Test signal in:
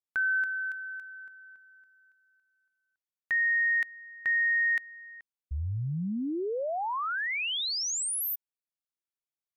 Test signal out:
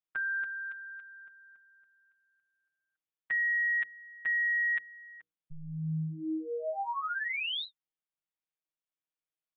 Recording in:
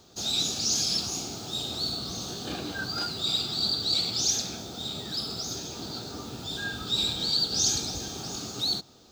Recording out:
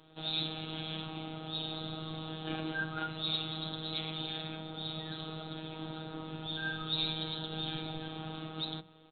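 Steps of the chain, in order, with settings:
phases set to zero 158 Hz
mains-hum notches 60/120/180/240/300/360/420/480 Hz
downsampling to 8,000 Hz

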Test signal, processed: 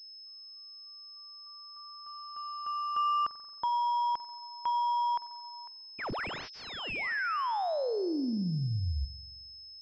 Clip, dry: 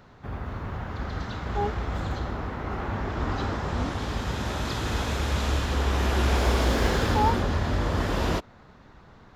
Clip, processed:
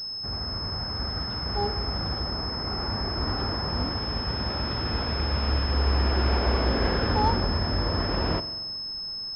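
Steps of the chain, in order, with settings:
spring reverb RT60 1.3 s, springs 44 ms, chirp 65 ms, DRR 13 dB
switching amplifier with a slow clock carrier 5,200 Hz
level −1 dB

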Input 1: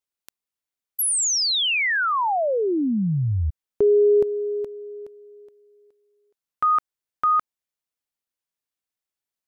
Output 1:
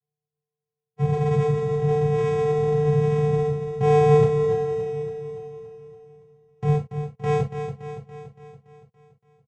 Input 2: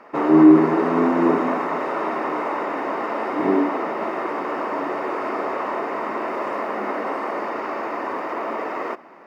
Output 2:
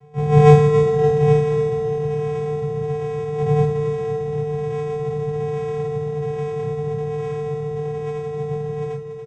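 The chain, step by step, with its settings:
compressing power law on the bin magnitudes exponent 0.23
sample-and-hold swept by an LFO 30×, swing 60% 1.2 Hz
channel vocoder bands 4, square 149 Hz
on a send: repeating echo 284 ms, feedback 57%, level −8.5 dB
on the sum: reverb whose tail is shaped and stops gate 90 ms falling, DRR −4.5 dB
level −5.5 dB

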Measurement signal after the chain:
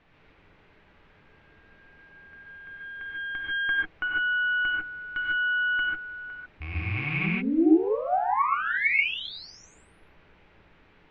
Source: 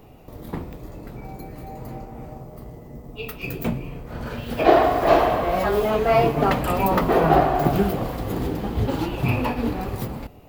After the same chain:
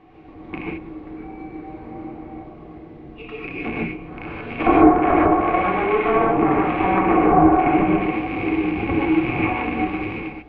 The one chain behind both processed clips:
loose part that buzzes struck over −28 dBFS, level −18 dBFS
mains-hum notches 60/120/180/240/300 Hz
harmonic generator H 4 −8 dB, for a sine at −2 dBFS
notch filter 650 Hz, Q 12
treble cut that deepens with the level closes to 880 Hz, closed at −12 dBFS
hollow resonant body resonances 320/740/1,100/2,200 Hz, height 15 dB, ringing for 65 ms
background noise pink −53 dBFS
transistor ladder low-pass 3,100 Hz, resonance 30%
reverb whose tail is shaped and stops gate 170 ms rising, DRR −3 dB
level −2 dB

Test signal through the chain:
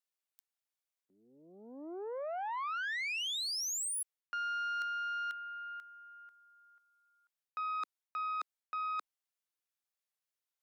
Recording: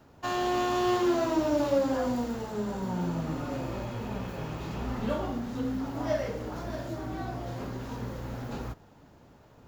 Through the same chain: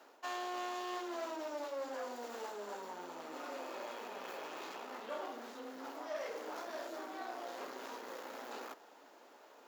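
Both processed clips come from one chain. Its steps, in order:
reversed playback
downward compressor 8 to 1, threshold −36 dBFS
reversed playback
tube saturation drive 35 dB, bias 0.5
Bessel high-pass filter 510 Hz, order 6
level +4 dB

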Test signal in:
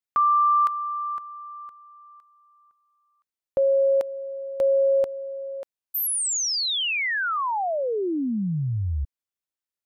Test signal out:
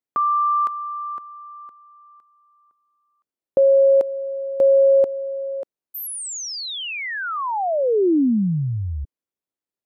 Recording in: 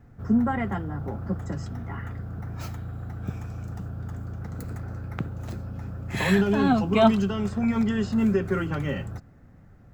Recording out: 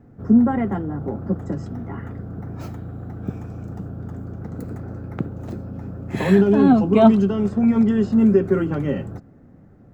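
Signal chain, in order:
parametric band 320 Hz +14 dB 2.9 octaves
level −5 dB

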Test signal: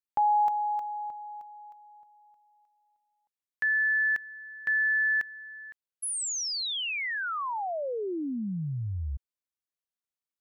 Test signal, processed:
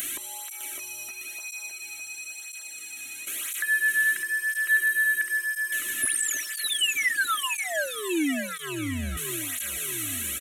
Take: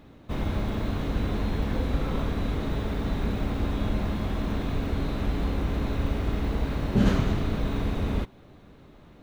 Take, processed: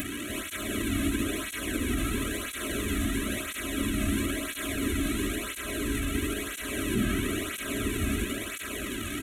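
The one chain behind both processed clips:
linear delta modulator 64 kbit/s, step −34 dBFS
high-shelf EQ 2,300 Hz +11 dB
comb filter 3.1 ms, depth 73%
dynamic equaliser 1,100 Hz, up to +4 dB, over −50 dBFS, Q 4.7
brickwall limiter −19 dBFS
upward compression 4 to 1, threshold −32 dBFS
phaser with its sweep stopped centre 2,100 Hz, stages 4
on a send: repeating echo 607 ms, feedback 51%, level −6 dB
on the sum: through-zero flanger with one copy inverted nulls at 0.99 Hz, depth 2.2 ms
level +5 dB

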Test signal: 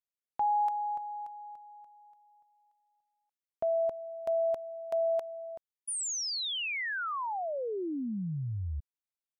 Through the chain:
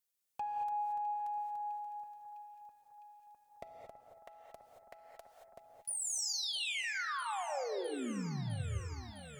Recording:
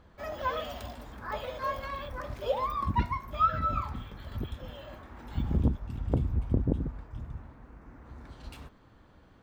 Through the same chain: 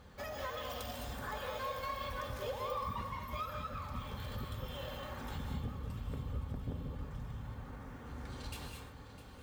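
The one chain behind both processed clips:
high-shelf EQ 4,200 Hz +11 dB
downward compressor 4 to 1, threshold −41 dBFS
tube saturation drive 31 dB, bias 0.25
hard clipping −35.5 dBFS
notch comb filter 330 Hz
on a send: delay that swaps between a low-pass and a high-pass 328 ms, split 1,800 Hz, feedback 87%, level −13.5 dB
on the sum: reverb whose tail is shaped and stops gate 250 ms rising, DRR 2 dB
level +2.5 dB

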